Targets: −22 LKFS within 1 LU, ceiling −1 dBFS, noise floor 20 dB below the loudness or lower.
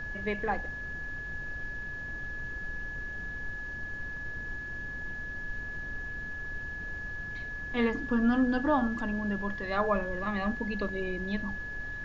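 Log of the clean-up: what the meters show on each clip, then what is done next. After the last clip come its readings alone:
interfering tone 1,700 Hz; level of the tone −37 dBFS; background noise floor −39 dBFS; target noise floor −54 dBFS; integrated loudness −33.5 LKFS; sample peak −14.5 dBFS; target loudness −22.0 LKFS
→ notch filter 1,700 Hz, Q 30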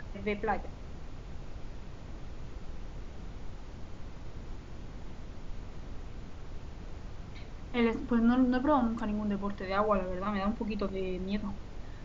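interfering tone none found; background noise floor −46 dBFS; target noise floor −52 dBFS
→ noise reduction from a noise print 6 dB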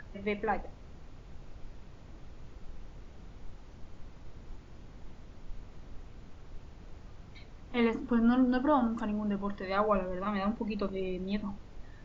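background noise floor −52 dBFS; integrated loudness −31.5 LKFS; sample peak −14.5 dBFS; target loudness −22.0 LKFS
→ level +9.5 dB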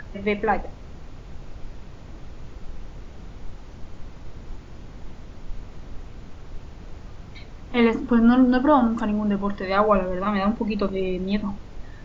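integrated loudness −22.0 LKFS; sample peak −4.5 dBFS; background noise floor −42 dBFS

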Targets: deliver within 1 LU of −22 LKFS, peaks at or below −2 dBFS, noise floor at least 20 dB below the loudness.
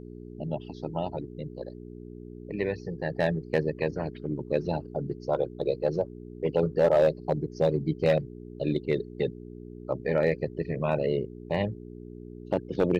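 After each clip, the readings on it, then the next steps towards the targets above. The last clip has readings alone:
share of clipped samples 0.3%; peaks flattened at −15.0 dBFS; mains hum 60 Hz; hum harmonics up to 420 Hz; level of the hum −40 dBFS; integrated loudness −29.5 LKFS; sample peak −15.0 dBFS; target loudness −22.0 LKFS
→ clipped peaks rebuilt −15 dBFS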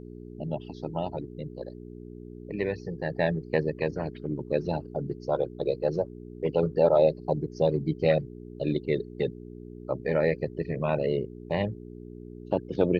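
share of clipped samples 0.0%; mains hum 60 Hz; hum harmonics up to 420 Hz; level of the hum −40 dBFS
→ hum removal 60 Hz, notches 7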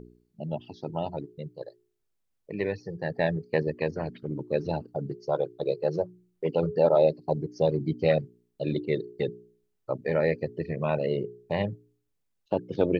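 mains hum none found; integrated loudness −29.0 LKFS; sample peak −10.0 dBFS; target loudness −22.0 LKFS
→ level +7 dB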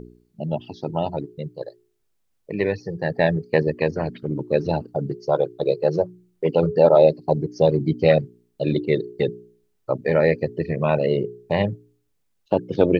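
integrated loudness −22.0 LKFS; sample peak −3.0 dBFS; background noise floor −70 dBFS

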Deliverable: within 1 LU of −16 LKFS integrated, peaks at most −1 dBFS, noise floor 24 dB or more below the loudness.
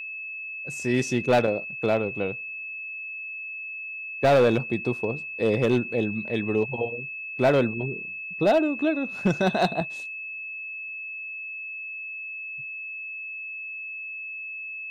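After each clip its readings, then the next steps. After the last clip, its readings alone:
share of clipped samples 0.6%; peaks flattened at −14.0 dBFS; interfering tone 2,600 Hz; level of the tone −33 dBFS; integrated loudness −27.0 LKFS; sample peak −14.0 dBFS; target loudness −16.0 LKFS
→ clipped peaks rebuilt −14 dBFS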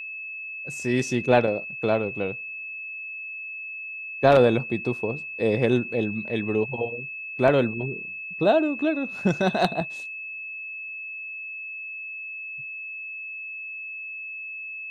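share of clipped samples 0.0%; interfering tone 2,600 Hz; level of the tone −33 dBFS
→ notch filter 2,600 Hz, Q 30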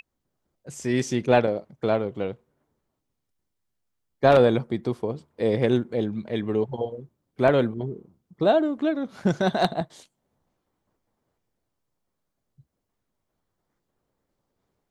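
interfering tone none found; integrated loudness −24.5 LKFS; sample peak −4.5 dBFS; target loudness −16.0 LKFS
→ level +8.5 dB
brickwall limiter −1 dBFS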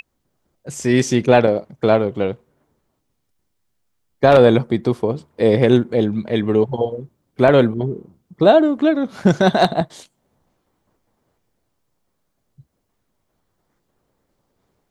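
integrated loudness −16.5 LKFS; sample peak −1.0 dBFS; background noise floor −71 dBFS

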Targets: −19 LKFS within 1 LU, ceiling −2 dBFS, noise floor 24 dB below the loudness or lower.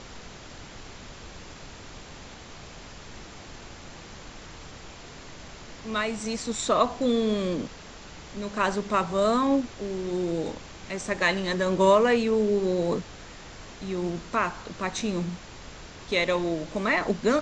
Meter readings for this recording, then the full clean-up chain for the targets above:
background noise floor −45 dBFS; target noise floor −51 dBFS; integrated loudness −26.5 LKFS; sample peak −7.5 dBFS; target loudness −19.0 LKFS
→ noise reduction from a noise print 6 dB
level +7.5 dB
brickwall limiter −2 dBFS

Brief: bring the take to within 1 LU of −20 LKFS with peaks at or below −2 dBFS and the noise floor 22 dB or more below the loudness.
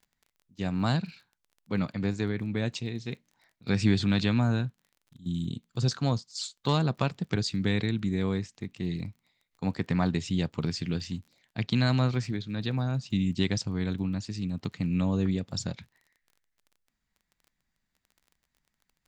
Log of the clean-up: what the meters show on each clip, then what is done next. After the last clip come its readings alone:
crackle rate 26 per second; integrated loudness −30.0 LKFS; sample peak −10.5 dBFS; target loudness −20.0 LKFS
→ click removal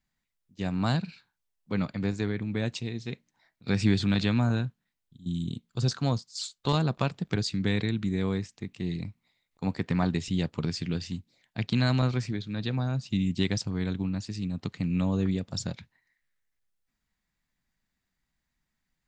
crackle rate 0 per second; integrated loudness −30.0 LKFS; sample peak −10.5 dBFS; target loudness −20.0 LKFS
→ level +10 dB
brickwall limiter −2 dBFS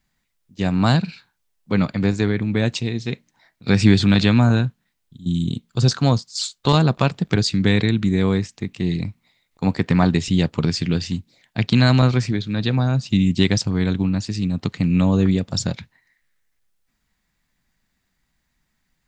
integrated loudness −20.0 LKFS; sample peak −2.0 dBFS; background noise floor −73 dBFS

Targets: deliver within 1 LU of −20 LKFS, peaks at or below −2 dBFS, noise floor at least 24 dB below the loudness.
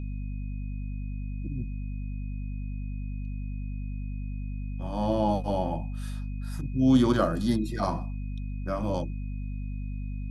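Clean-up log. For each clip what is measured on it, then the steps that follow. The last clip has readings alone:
mains hum 50 Hz; hum harmonics up to 250 Hz; level of the hum −31 dBFS; interfering tone 2,500 Hz; level of the tone −57 dBFS; integrated loudness −31.0 LKFS; sample peak −10.0 dBFS; target loudness −20.0 LKFS
→ mains-hum notches 50/100/150/200/250 Hz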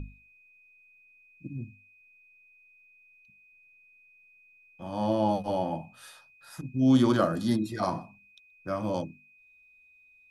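mains hum none found; interfering tone 2,500 Hz; level of the tone −57 dBFS
→ notch filter 2,500 Hz, Q 30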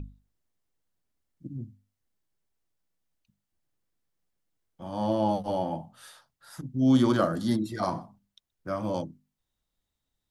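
interfering tone none found; integrated loudness −28.0 LKFS; sample peak −12.0 dBFS; target loudness −20.0 LKFS
→ level +8 dB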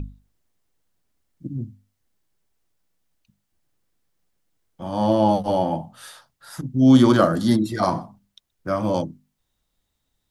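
integrated loudness −20.0 LKFS; sample peak −4.0 dBFS; background noise floor −76 dBFS

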